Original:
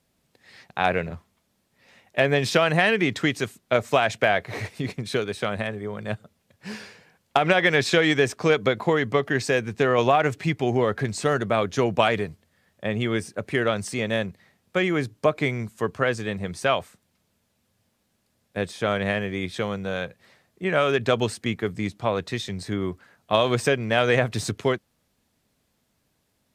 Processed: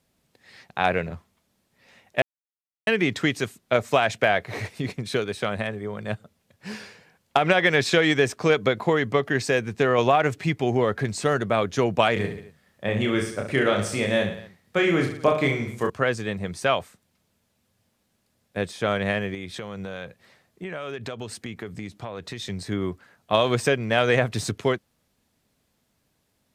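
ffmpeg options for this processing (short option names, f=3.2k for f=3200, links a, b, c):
-filter_complex "[0:a]asettb=1/sr,asplit=3[a][b][c];[a]atrim=end=12.134[d];[b]atrim=start=12.13:end=15.9,asetpts=PTS-STARTPTS,afade=t=in:d=0.004:c=qsin,afade=t=out:st=3.766:d=0.004:c=qsin,aecho=1:1:30|67.5|114.4|173|246.2:0.631|0.398|0.251|0.158|0.1,atrim=end_sample=166257[e];[c]atrim=start=15.896[f];[d][e]acrossfade=d=0.004:c1=hsin:c2=qsin[g];[g][f]acrossfade=d=0.004:c1=qsin:c2=hsin,asettb=1/sr,asplit=3[h][i][j];[h]atrim=end=19.344[k];[i]atrim=start=19.34:end=22.42,asetpts=PTS-STARTPTS,afade=t=in:d=0.004:c=qsin,afade=t=out:st=3.076:d=0.004:c=qsin,acompressor=threshold=-30dB:ratio=6:attack=3.2:release=140:knee=1:detection=peak[l];[j]atrim=start=22.416[m];[k][l]acrossfade=d=0.004:c1=hsin:c2=qsin[n];[n][m]acrossfade=d=0.004:c1=qsin:c2=hsin,asplit=3[o][p][q];[o]atrim=end=2.22,asetpts=PTS-STARTPTS,afade=t=out:st=2.216:d=0.004:c=hsin[r];[p]atrim=start=2.22:end=2.87,asetpts=PTS-STARTPTS,volume=0[s];[q]atrim=start=2.87,asetpts=PTS-STARTPTS,afade=t=in:d=0.004:c=hsin[t];[r][s][t]concat=n=3:v=0:a=1"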